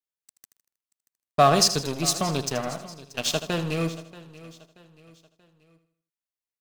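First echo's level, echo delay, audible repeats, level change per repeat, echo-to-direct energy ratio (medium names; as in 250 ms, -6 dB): -11.5 dB, 79 ms, 8, no regular repeats, -9.5 dB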